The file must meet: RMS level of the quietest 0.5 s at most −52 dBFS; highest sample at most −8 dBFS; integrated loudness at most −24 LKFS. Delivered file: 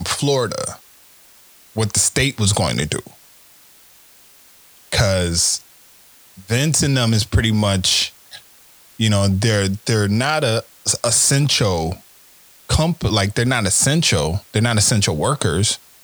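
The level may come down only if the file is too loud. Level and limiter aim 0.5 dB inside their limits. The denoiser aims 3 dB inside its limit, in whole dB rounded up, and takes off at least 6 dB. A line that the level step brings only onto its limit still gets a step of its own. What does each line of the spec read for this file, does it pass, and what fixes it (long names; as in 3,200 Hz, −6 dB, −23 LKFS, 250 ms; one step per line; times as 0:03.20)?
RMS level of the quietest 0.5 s −48 dBFS: out of spec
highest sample −3.0 dBFS: out of spec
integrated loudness −17.5 LKFS: out of spec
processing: level −7 dB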